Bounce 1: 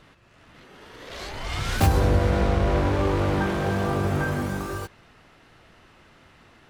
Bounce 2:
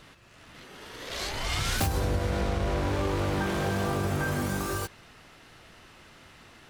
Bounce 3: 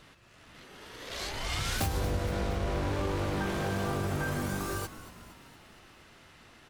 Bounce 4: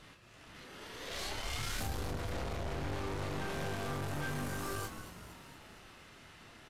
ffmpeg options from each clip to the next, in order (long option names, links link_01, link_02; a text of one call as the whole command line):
ffmpeg -i in.wav -af "highshelf=frequency=3400:gain=8.5,acompressor=threshold=-25dB:ratio=4" out.wav
ffmpeg -i in.wav -filter_complex "[0:a]asplit=7[link_01][link_02][link_03][link_04][link_05][link_06][link_07];[link_02]adelay=233,afreqshift=-81,volume=-14.5dB[link_08];[link_03]adelay=466,afreqshift=-162,volume=-19.1dB[link_09];[link_04]adelay=699,afreqshift=-243,volume=-23.7dB[link_10];[link_05]adelay=932,afreqshift=-324,volume=-28.2dB[link_11];[link_06]adelay=1165,afreqshift=-405,volume=-32.8dB[link_12];[link_07]adelay=1398,afreqshift=-486,volume=-37.4dB[link_13];[link_01][link_08][link_09][link_10][link_11][link_12][link_13]amix=inputs=7:normalize=0,volume=-3.5dB" out.wav
ffmpeg -i in.wav -filter_complex "[0:a]aeval=exprs='(tanh(79.4*val(0)+0.45)-tanh(0.45))/79.4':channel_layout=same,asplit=2[link_01][link_02];[link_02]adelay=28,volume=-6dB[link_03];[link_01][link_03]amix=inputs=2:normalize=0,volume=1dB" -ar 32000 -c:a aac -b:a 96k out.aac